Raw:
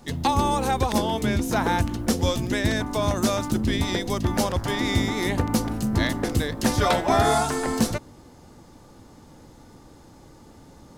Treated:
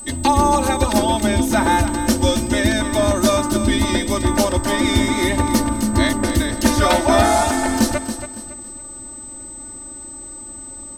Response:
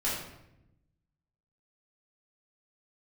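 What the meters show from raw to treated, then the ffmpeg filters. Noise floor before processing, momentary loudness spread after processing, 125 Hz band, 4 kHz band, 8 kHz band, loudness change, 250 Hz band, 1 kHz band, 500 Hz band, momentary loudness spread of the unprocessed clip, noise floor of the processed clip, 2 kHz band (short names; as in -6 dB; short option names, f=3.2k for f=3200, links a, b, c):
-49 dBFS, 16 LU, +3.5 dB, +6.0 dB, +9.5 dB, +6.5 dB, +7.0 dB, +6.0 dB, +6.5 dB, 4 LU, -35 dBFS, +6.5 dB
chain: -af "aeval=exprs='val(0)+0.0224*sin(2*PI*8100*n/s)':c=same,aecho=1:1:3.3:0.95,aecho=1:1:279|558|837|1116:0.316|0.104|0.0344|0.0114,volume=3dB"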